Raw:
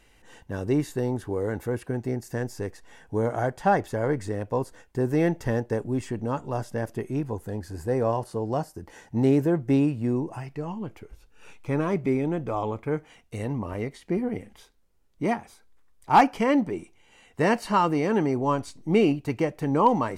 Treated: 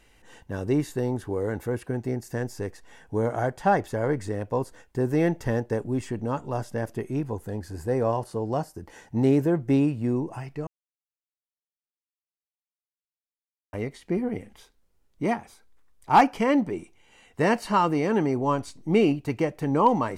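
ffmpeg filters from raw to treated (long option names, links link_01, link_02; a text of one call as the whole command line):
ffmpeg -i in.wav -filter_complex "[0:a]asplit=3[link_01][link_02][link_03];[link_01]atrim=end=10.67,asetpts=PTS-STARTPTS,afade=type=out:start_time=10.666:duration=0.004:curve=hsin[link_04];[link_02]atrim=start=10.67:end=13.73,asetpts=PTS-STARTPTS,volume=0[link_05];[link_03]atrim=start=13.73,asetpts=PTS-STARTPTS,afade=type=in:duration=0.004:curve=hsin[link_06];[link_04][link_05][link_06]concat=n=3:v=0:a=1" out.wav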